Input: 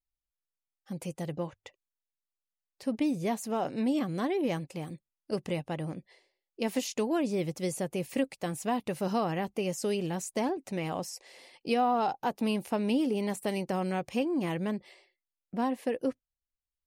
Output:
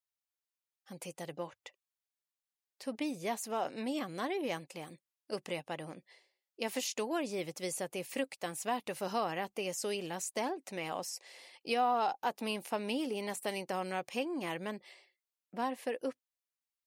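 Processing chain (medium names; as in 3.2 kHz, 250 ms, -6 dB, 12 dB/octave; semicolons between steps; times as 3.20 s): high-pass 710 Hz 6 dB/octave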